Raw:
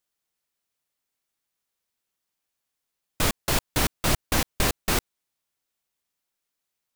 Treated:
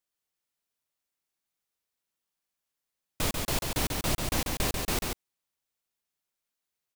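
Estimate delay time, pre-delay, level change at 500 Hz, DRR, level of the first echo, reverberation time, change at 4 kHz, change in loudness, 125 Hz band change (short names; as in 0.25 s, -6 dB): 0.141 s, none, -4.5 dB, none, -4.0 dB, none, -4.5 dB, -4.5 dB, -4.0 dB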